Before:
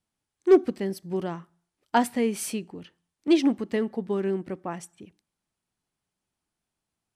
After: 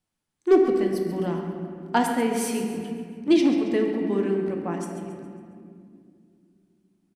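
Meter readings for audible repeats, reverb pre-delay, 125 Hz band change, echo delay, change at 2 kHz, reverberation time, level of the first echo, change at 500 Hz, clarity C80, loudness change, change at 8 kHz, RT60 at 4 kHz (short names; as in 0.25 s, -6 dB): 2, 3 ms, +4.0 dB, 0.137 s, +2.5 dB, 2.3 s, -11.5 dB, +2.5 dB, 4.0 dB, +1.5 dB, +1.0 dB, 1.3 s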